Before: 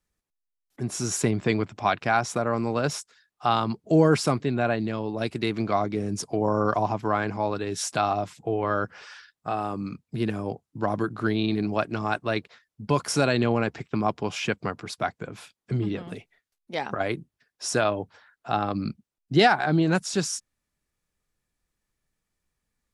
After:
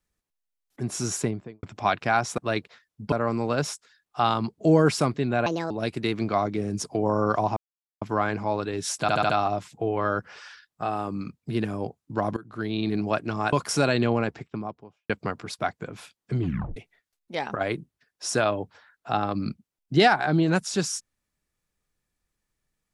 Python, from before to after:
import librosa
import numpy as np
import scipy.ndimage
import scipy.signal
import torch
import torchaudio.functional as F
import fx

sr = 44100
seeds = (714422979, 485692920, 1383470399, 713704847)

y = fx.studio_fade_out(x, sr, start_s=1.06, length_s=0.57)
y = fx.studio_fade_out(y, sr, start_s=13.45, length_s=1.04)
y = fx.edit(y, sr, fx.speed_span(start_s=4.72, length_s=0.37, speed=1.51),
    fx.insert_silence(at_s=6.95, length_s=0.45),
    fx.stutter(start_s=7.95, slice_s=0.07, count=5),
    fx.fade_in_from(start_s=11.02, length_s=0.58, floor_db=-18.5),
    fx.move(start_s=12.18, length_s=0.74, to_s=2.38),
    fx.tape_stop(start_s=15.81, length_s=0.35), tone=tone)